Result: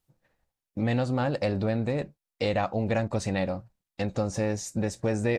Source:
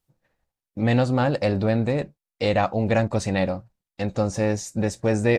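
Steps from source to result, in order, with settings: compressor 2:1, threshold -27 dBFS, peak gain reduction 7 dB

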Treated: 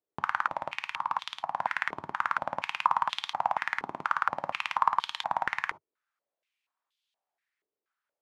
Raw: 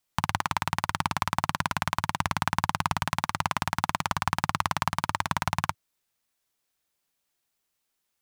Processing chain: 0.72–1.51 negative-ratio compressor -31 dBFS, ratio -1; non-linear reverb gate 90 ms flat, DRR 12 dB; stepped band-pass 4.2 Hz 420–3400 Hz; gain +7 dB

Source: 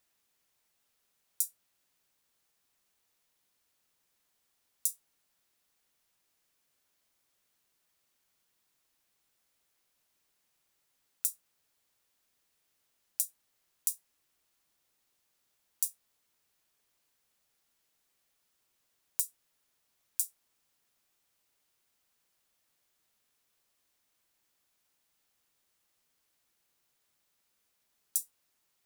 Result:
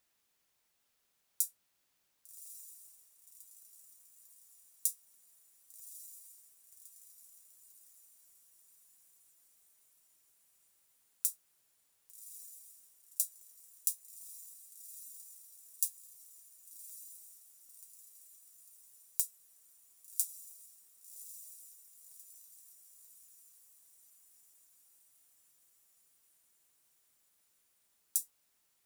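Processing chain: diffused feedback echo 1.151 s, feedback 60%, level -11.5 dB; gain -1 dB

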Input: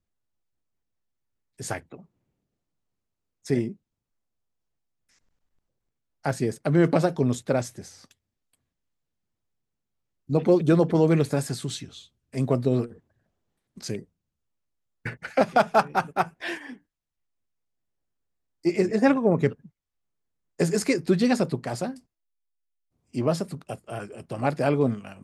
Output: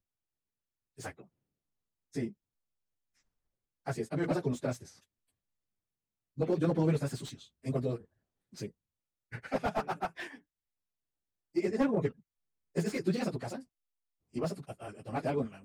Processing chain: plain phase-vocoder stretch 0.62×; slew limiter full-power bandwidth 63 Hz; gain -5 dB

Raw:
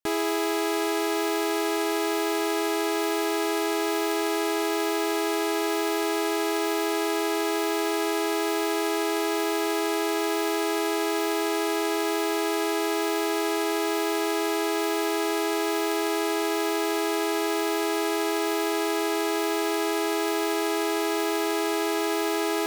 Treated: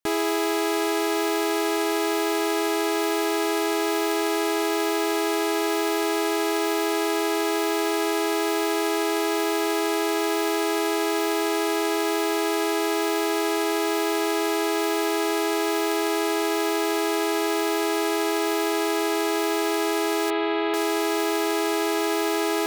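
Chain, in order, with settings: 20.3–20.74 steep low-pass 3900 Hz 48 dB/oct; gain +2 dB

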